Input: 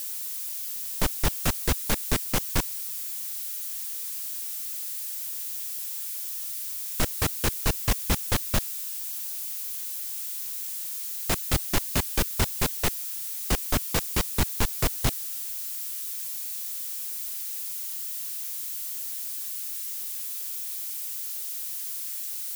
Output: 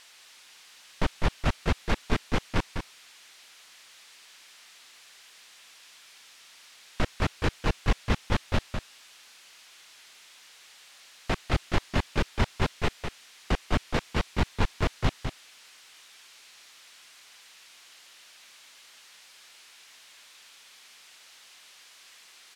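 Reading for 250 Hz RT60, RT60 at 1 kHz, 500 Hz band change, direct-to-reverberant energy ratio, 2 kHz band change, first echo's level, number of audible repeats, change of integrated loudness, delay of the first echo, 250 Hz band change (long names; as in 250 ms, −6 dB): no reverb audible, no reverb audible, +1.0 dB, no reverb audible, 0.0 dB, −7.0 dB, 1, −2.5 dB, 202 ms, +0.5 dB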